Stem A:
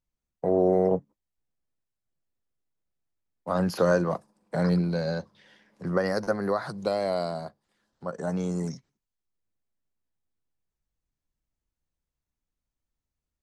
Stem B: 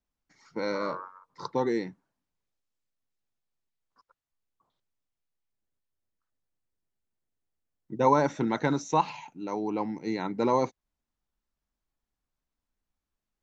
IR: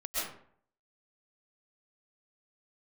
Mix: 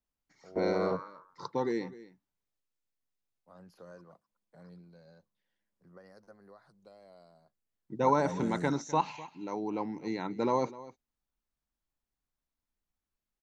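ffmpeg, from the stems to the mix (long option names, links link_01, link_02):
-filter_complex "[0:a]volume=-9dB[link_01];[1:a]volume=-4dB,asplit=3[link_02][link_03][link_04];[link_03]volume=-18dB[link_05];[link_04]apad=whole_len=591850[link_06];[link_01][link_06]sidechaingate=range=-20dB:threshold=-56dB:ratio=16:detection=peak[link_07];[link_05]aecho=0:1:253:1[link_08];[link_07][link_02][link_08]amix=inputs=3:normalize=0"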